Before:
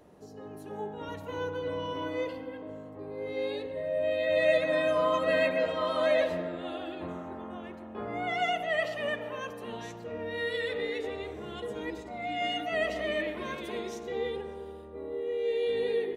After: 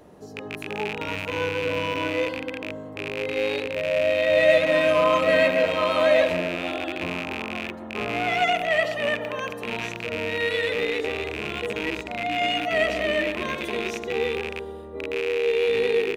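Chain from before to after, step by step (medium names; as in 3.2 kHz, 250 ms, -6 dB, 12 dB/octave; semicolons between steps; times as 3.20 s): rattle on loud lows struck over -45 dBFS, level -25 dBFS; trim +7 dB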